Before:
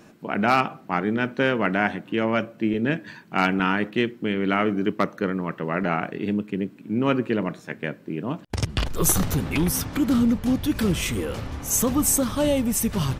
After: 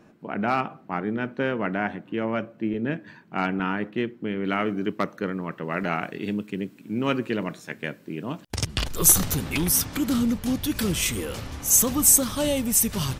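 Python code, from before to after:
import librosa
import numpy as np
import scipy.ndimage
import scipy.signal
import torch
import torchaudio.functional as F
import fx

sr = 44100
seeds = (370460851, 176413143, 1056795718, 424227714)

y = fx.high_shelf(x, sr, hz=3000.0, db=fx.steps((0.0, -9.5), (4.44, 2.0), (5.69, 10.0)))
y = y * 10.0 ** (-3.5 / 20.0)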